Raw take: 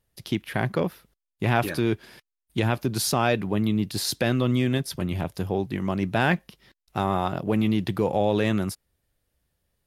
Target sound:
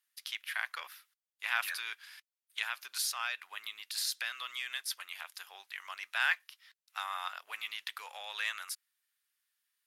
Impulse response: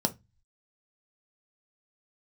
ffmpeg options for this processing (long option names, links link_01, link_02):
-filter_complex "[0:a]highpass=frequency=1300:width=0.5412,highpass=frequency=1300:width=1.3066,asettb=1/sr,asplit=3[link_01][link_02][link_03];[link_01]atrim=end=2.654[link_04];[link_02]atrim=start=2.65:end=4.81,asetpts=PTS-STARTPTS,afade=type=in:duration=0.004:curve=qsin,afade=type=out:start_time=2.156:duration=0.004:curve=qsin,acompressor=threshold=-31dB:ratio=2.5[link_05];[link_03]atrim=start=4.806[link_06];[link_04][link_05]acrossfade=duration=0.004:curve1=hsin:curve2=qsin[link_07];[link_07][link_06]acrossfade=duration=0.004:curve1=qsin:curve2=hsin,volume=-2dB"